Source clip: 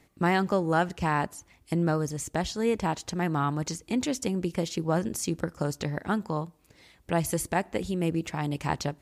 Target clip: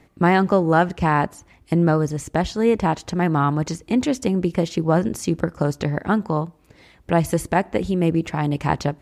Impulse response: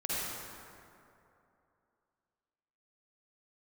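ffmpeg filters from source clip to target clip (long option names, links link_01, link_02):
-af "highshelf=frequency=3600:gain=-10.5,volume=8.5dB"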